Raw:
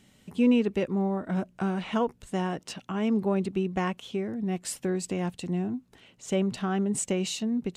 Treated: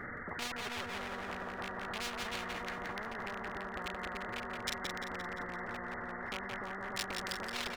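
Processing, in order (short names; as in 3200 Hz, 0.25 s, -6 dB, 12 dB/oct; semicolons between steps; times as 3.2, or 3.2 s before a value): nonlinear frequency compression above 1100 Hz 4:1; in parallel at +2.5 dB: compressor 16:1, threshold -35 dBFS, peak gain reduction 18.5 dB; on the sum: resonator 240 Hz, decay 1 s, mix 90%; reverb removal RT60 1.1 s; feedback echo 0.294 s, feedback 52%, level -5.5 dB; hard clip -34 dBFS, distortion -9 dB; on a send: split-band echo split 350 Hz, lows 87 ms, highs 0.173 s, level -7.5 dB; on the sum: limiter -36 dBFS, peak gain reduction 6.5 dB; spectral compressor 10:1; gain +16 dB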